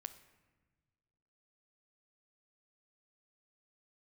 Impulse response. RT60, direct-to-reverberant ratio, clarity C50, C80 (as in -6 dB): not exponential, 9.5 dB, 13.0 dB, 15.0 dB